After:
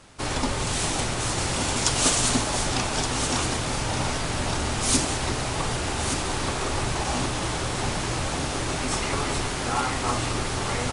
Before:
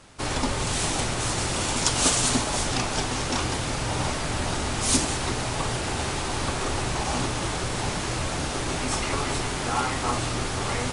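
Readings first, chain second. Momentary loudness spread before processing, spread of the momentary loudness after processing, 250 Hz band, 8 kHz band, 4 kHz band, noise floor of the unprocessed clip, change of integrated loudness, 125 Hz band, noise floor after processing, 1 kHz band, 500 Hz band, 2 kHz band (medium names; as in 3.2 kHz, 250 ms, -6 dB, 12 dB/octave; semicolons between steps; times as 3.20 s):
6 LU, 5 LU, +0.5 dB, +0.5 dB, +0.5 dB, -29 dBFS, +0.5 dB, +0.5 dB, -29 dBFS, +0.5 dB, +0.5 dB, +0.5 dB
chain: delay 1172 ms -8.5 dB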